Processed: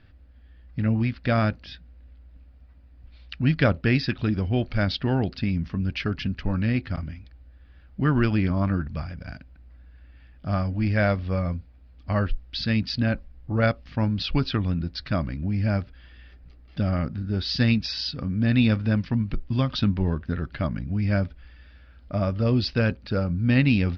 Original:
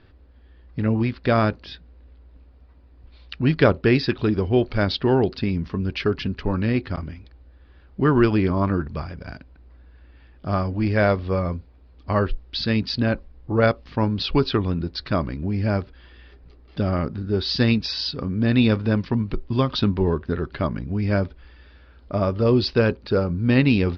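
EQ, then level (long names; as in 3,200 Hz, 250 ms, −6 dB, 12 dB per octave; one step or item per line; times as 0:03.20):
graphic EQ with 15 bands 400 Hz −12 dB, 1,000 Hz −8 dB, 4,000 Hz −4 dB
0.0 dB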